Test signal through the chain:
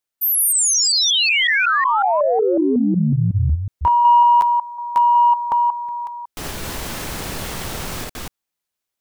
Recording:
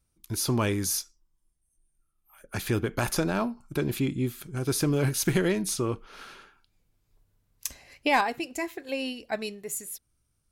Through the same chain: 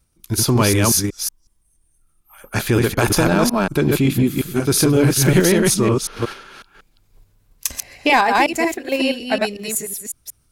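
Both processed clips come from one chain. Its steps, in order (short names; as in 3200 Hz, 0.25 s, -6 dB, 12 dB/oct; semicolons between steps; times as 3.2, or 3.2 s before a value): reverse delay 0.184 s, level -2 dB; in parallel at -0.5 dB: level quantiser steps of 15 dB; on the sum: soft clip -8.5 dBFS; gain +6.5 dB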